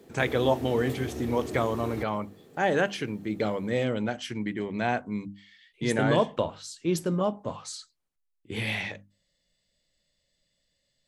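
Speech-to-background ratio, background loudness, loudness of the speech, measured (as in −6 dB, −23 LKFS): 8.5 dB, −37.5 LKFS, −29.0 LKFS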